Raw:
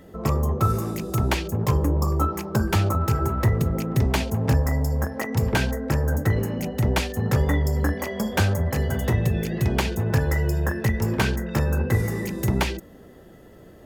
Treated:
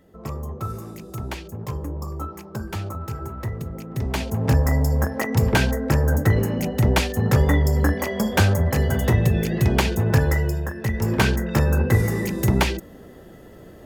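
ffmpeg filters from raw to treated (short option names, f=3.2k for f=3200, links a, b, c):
-af "volume=13dB,afade=t=in:st=3.89:d=0.82:silence=0.251189,afade=t=out:st=10.24:d=0.49:silence=0.334965,afade=t=in:st=10.73:d=0.49:silence=0.334965"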